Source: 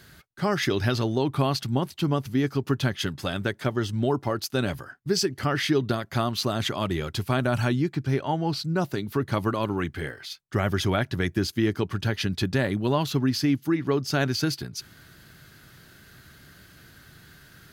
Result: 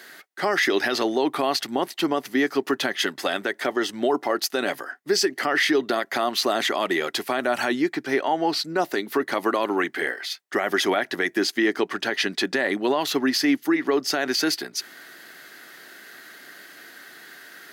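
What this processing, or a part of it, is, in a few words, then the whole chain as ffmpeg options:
laptop speaker: -filter_complex "[0:a]highpass=f=290:w=0.5412,highpass=f=290:w=1.3066,equalizer=f=730:t=o:w=0.28:g=5,equalizer=f=1.9k:t=o:w=0.3:g=8.5,alimiter=limit=-18.5dB:level=0:latency=1:release=46,asettb=1/sr,asplit=3[a][b][c];[a]atrim=end=11.434[d];[b]atrim=start=11.43:end=13,asetpts=PTS-STARTPTS,afade=t=in:d=0.004:c=qsin,afade=t=out:st=1.566:d=0.004:c=qsin,equalizer=f=13k:t=o:w=0.54:g=-6[e];[c]atrim=start=12.996[f];[d][e]acrossfade=d=0.004:c1=hsin:c2=qsin[g];[g][f]acrossfade=d=0.004:c1=qsin:c2=hsin,volume=6.5dB"

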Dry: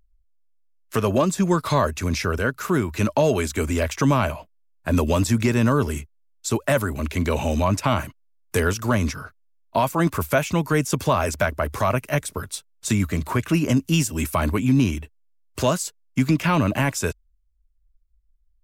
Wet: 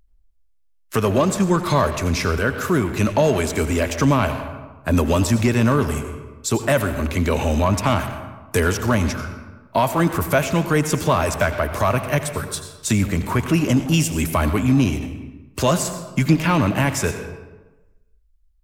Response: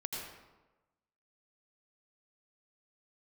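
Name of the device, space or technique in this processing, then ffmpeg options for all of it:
saturated reverb return: -filter_complex "[0:a]asettb=1/sr,asplit=3[a][b][c];[a]atrim=end=15.674[d];[b]atrim=start=15.67:end=16.34,asetpts=PTS-STARTPTS,afade=t=in:d=0.004:c=qsin,afade=t=out:st=0.666:d=0.004:c=qsin,aecho=1:1:5.7:0.55,atrim=end_sample=29547[e];[c]atrim=start=16.336[f];[d][e]acrossfade=d=0.004:c1=hsin:c2=qsin[g];[g][f]acrossfade=d=0.004:c1=qsin:c2=hsin,asplit=2[h][i];[1:a]atrim=start_sample=2205[j];[i][j]afir=irnorm=-1:irlink=0,asoftclip=type=tanh:threshold=-22dB,volume=-2.5dB[k];[h][k]amix=inputs=2:normalize=0"

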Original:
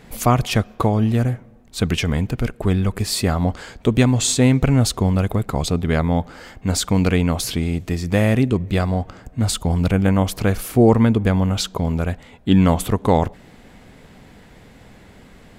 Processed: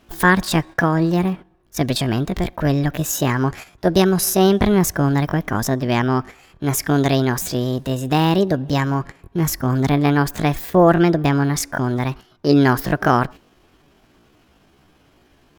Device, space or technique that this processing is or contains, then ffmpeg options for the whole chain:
chipmunk voice: -af "agate=range=-10dB:threshold=-32dB:ratio=16:detection=peak,equalizer=f=1.1k:t=o:w=0.37:g=6,asetrate=66075,aresample=44100,atempo=0.66742"

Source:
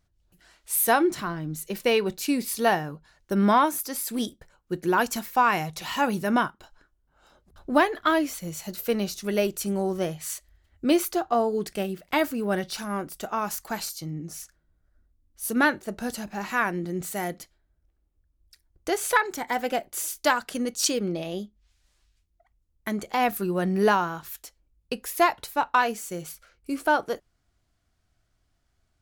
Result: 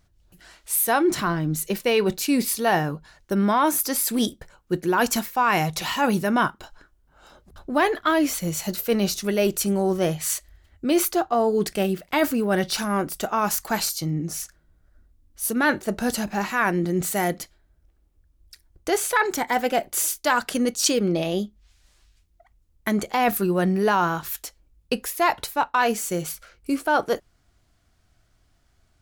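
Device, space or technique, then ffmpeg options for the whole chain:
compression on the reversed sound: -af "areverse,acompressor=threshold=-26dB:ratio=4,areverse,volume=8dB"

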